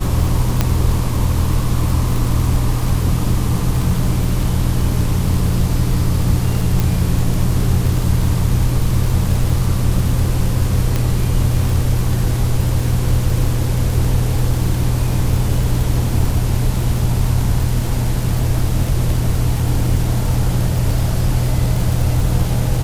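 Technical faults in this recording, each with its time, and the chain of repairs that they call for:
surface crackle 45 per second −20 dBFS
0:00.61: click −1 dBFS
0:06.80: click
0:10.96: click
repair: click removal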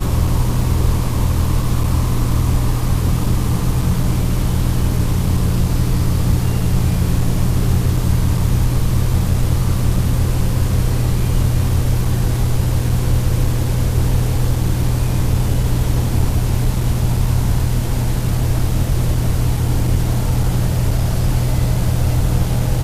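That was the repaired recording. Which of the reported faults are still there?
0:00.61: click

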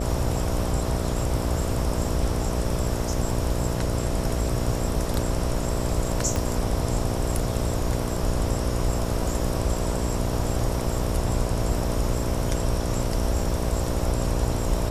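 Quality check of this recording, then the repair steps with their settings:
mains buzz 60 Hz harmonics 11 −29 dBFS
0:06.36: click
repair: click removal
hum removal 60 Hz, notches 11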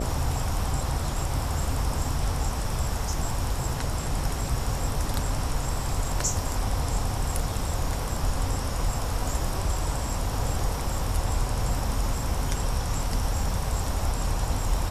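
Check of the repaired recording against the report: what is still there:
0:06.36: click

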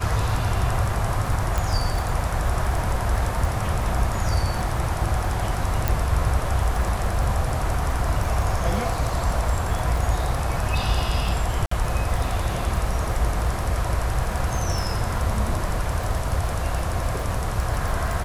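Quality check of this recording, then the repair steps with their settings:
surface crackle 27 per second −27 dBFS
0:01.58: click
0:05.88: click
0:11.66–0:11.71: drop-out 54 ms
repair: click removal
repair the gap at 0:11.66, 54 ms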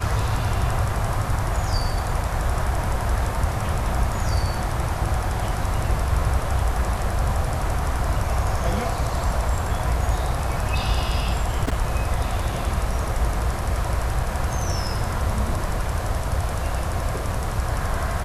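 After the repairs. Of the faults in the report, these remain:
0:05.88: click

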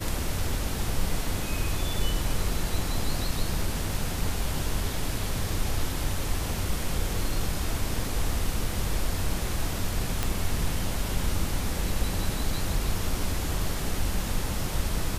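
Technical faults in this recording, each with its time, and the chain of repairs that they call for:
0:10.23: click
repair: click removal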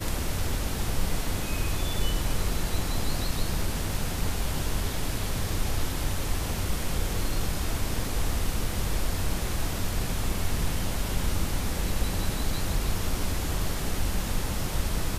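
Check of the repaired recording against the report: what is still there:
none of them is left

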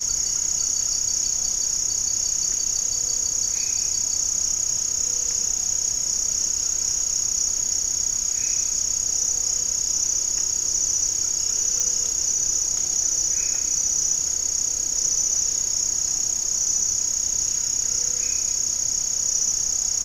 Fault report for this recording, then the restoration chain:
0:11.80: click −11 dBFS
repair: click removal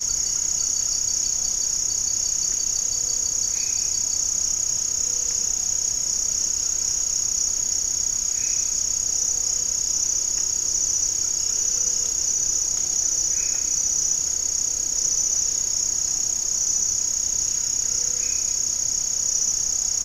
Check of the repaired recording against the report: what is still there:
none of them is left

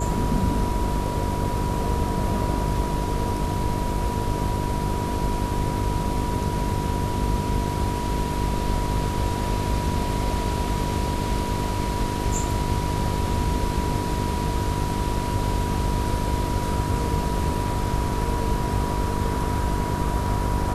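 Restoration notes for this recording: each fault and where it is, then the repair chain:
mains buzz 50 Hz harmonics 9 −28 dBFS
whistle 970 Hz −30 dBFS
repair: notch filter 970 Hz, Q 30
hum removal 50 Hz, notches 9

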